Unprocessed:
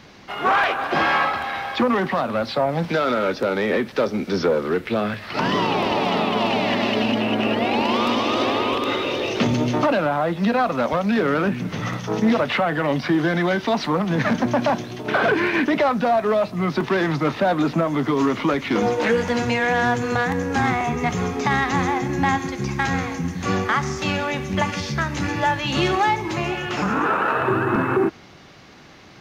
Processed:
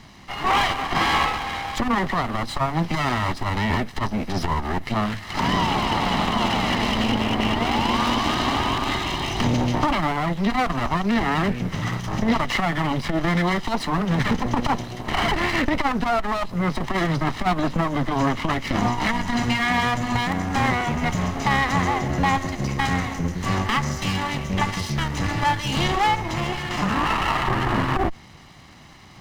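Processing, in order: comb filter that takes the minimum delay 1 ms; bass shelf 100 Hz +7 dB; transformer saturation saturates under 90 Hz

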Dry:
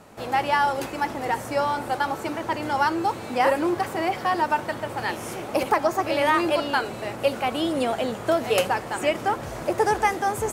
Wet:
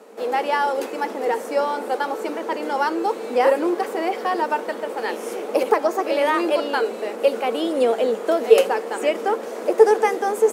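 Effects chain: elliptic high-pass 210 Hz, stop band 40 dB; peaking EQ 460 Hz +14 dB 0.35 oct

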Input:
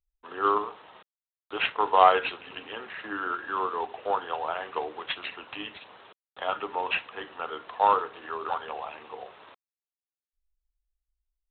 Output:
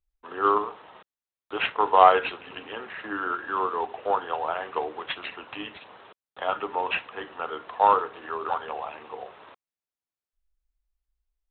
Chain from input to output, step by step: treble shelf 3.7 kHz -9 dB; trim +3 dB

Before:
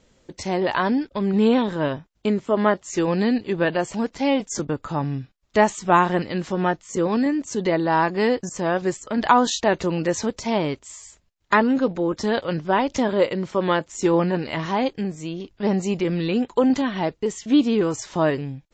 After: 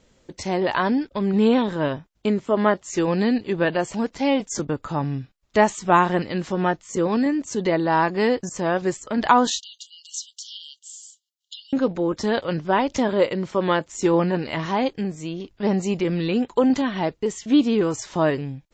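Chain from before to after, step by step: 9.59–11.73 s: brick-wall FIR high-pass 2.8 kHz

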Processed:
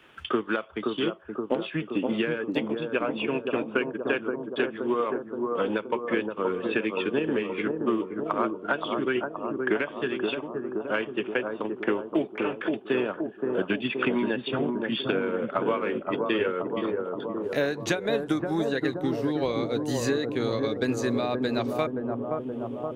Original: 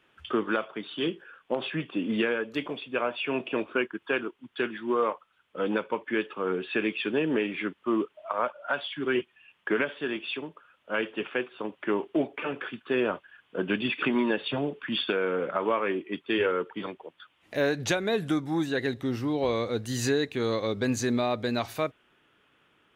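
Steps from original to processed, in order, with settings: transient shaper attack +5 dB, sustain -6 dB; bucket-brigade echo 523 ms, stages 4096, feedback 65%, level -4.5 dB; three bands compressed up and down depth 40%; trim -2 dB

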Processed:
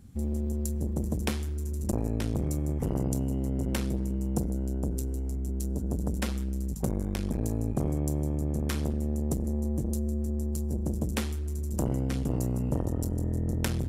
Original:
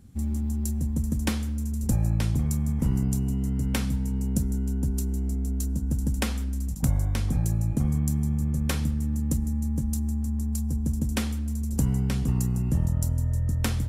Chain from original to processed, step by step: transformer saturation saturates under 510 Hz

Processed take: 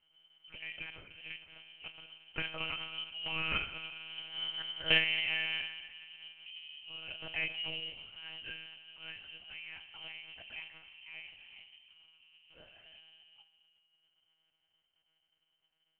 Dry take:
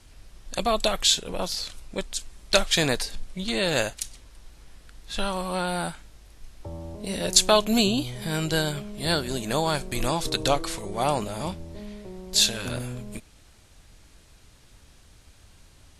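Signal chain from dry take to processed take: Doppler pass-by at 4.50 s, 22 m/s, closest 5.1 m; on a send at -10 dB: reverberation RT60 2.2 s, pre-delay 5 ms; on the sum: frequency inversion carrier 3.1 kHz; monotone LPC vocoder at 8 kHz 160 Hz; trim +3.5 dB

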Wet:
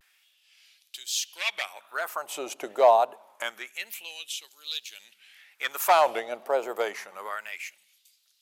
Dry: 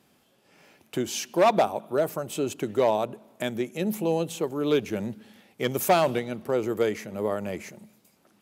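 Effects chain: LFO high-pass sine 0.27 Hz 660–3900 Hz; vibrato 1.1 Hz 95 cents

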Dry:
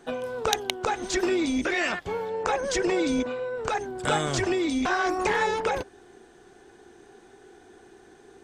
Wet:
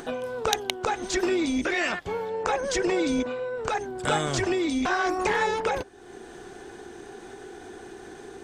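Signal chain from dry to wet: upward compressor, threshold -32 dBFS

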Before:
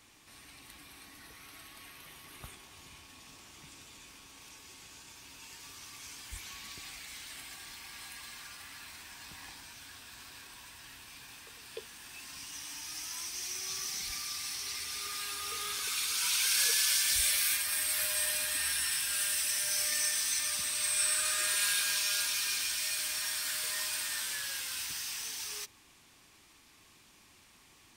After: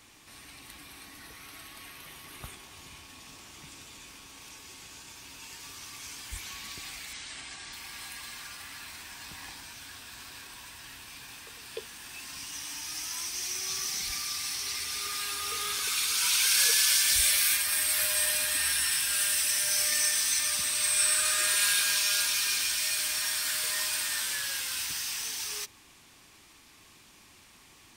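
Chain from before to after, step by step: 7.13–7.73 s: steep low-pass 8.9 kHz 48 dB/octave; trim +4.5 dB

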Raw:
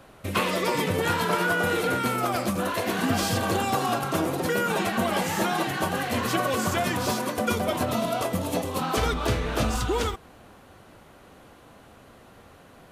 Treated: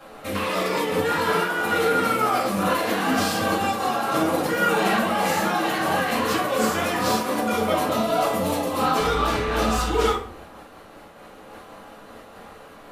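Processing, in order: tone controls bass -13 dB, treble -1 dB; peak limiter -22.5 dBFS, peak gain reduction 11 dB; simulated room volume 450 m³, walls furnished, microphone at 7.6 m; random flutter of the level, depth 60%

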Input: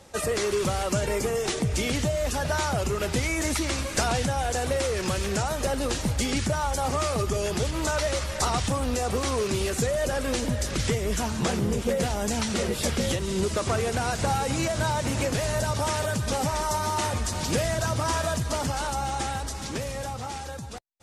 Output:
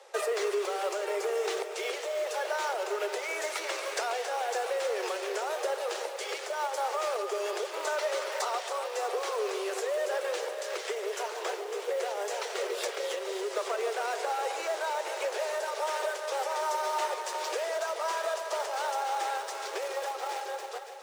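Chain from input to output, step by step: treble shelf 5.4 kHz -10.5 dB; in parallel at -12 dB: Schmitt trigger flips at -34 dBFS; on the sum: echo whose repeats swap between lows and highs 140 ms, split 840 Hz, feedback 81%, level -8.5 dB; compression, threshold -26 dBFS, peak gain reduction 7.5 dB; steep high-pass 380 Hz 96 dB/octave

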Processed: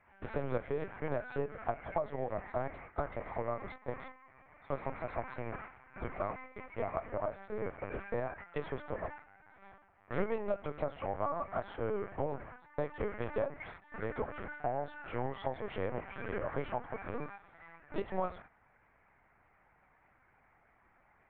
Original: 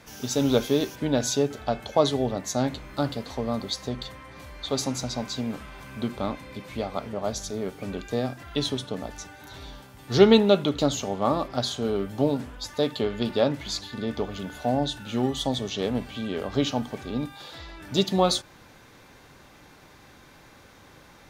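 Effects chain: elliptic low-pass 2.2 kHz, stop band 80 dB; gate -41 dBFS, range -13 dB; high-pass 520 Hz 12 dB/octave; compression 6:1, threshold -32 dBFS, peak gain reduction 14.5 dB; LPC vocoder at 8 kHz pitch kept; trim +1 dB

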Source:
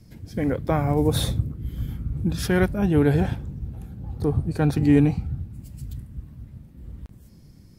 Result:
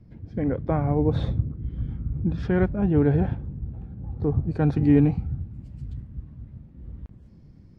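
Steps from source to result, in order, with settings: tape spacing loss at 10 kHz 40 dB, from 4.42 s at 10 kHz 27 dB

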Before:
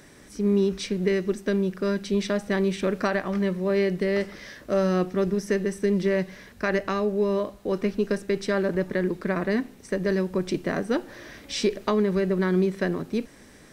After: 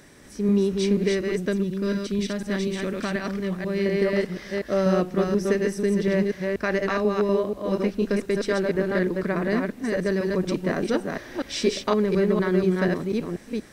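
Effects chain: chunks repeated in reverse 243 ms, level -2.5 dB; 1.53–3.86 s: peaking EQ 720 Hz -7.5 dB 2.4 oct

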